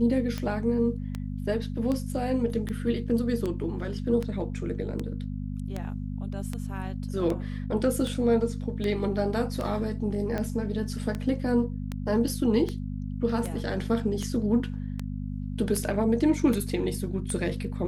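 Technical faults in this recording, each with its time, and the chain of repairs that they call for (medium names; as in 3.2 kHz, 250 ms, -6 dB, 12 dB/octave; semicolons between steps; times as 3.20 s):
hum 50 Hz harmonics 5 -33 dBFS
tick 78 rpm -18 dBFS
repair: de-click; de-hum 50 Hz, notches 5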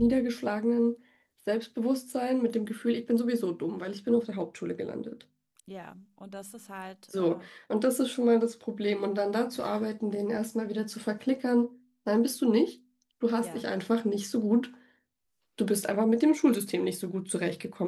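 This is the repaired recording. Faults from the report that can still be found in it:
nothing left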